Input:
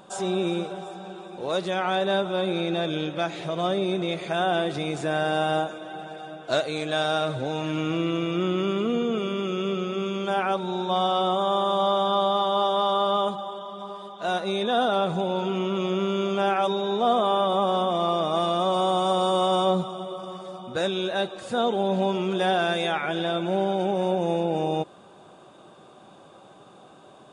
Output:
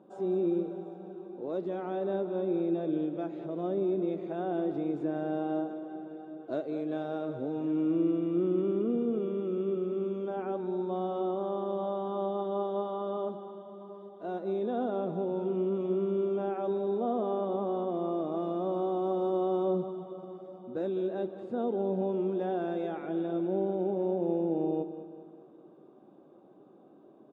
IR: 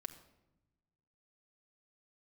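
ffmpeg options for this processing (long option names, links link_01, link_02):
-af "bandpass=frequency=310:width_type=q:width=2.1:csg=0,aecho=1:1:202|404|606|808|1010:0.251|0.123|0.0603|0.0296|0.0145"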